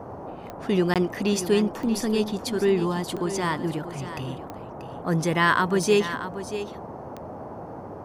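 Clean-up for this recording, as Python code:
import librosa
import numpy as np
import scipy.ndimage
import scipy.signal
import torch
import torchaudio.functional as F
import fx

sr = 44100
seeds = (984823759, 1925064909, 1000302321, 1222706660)

y = fx.fix_declick_ar(x, sr, threshold=10.0)
y = fx.fix_interpolate(y, sr, at_s=(0.94,), length_ms=17.0)
y = fx.noise_reduce(y, sr, print_start_s=0.0, print_end_s=0.5, reduce_db=30.0)
y = fx.fix_echo_inverse(y, sr, delay_ms=635, level_db=-11.5)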